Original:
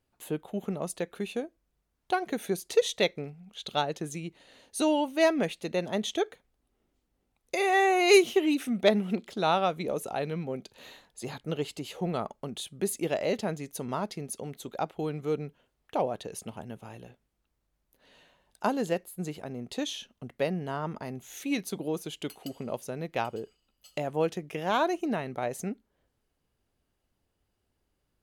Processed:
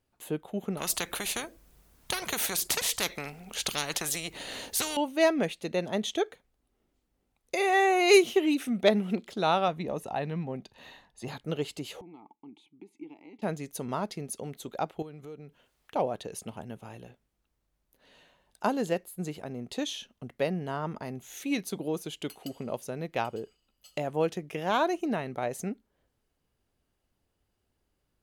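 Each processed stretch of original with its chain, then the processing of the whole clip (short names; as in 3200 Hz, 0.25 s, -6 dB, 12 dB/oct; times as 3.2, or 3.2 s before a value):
0.77–4.97 high shelf 8100 Hz +8.5 dB + spectral compressor 4:1
9.68–11.28 high shelf 5200 Hz -10.5 dB + notch 7300 Hz, Q 24 + comb 1.1 ms, depth 38%
12.01–13.42 compressor 4:1, threshold -32 dBFS + vowel filter u
15.02–15.96 compressor 3:1, threshold -45 dBFS + mismatched tape noise reduction encoder only
whole clip: dry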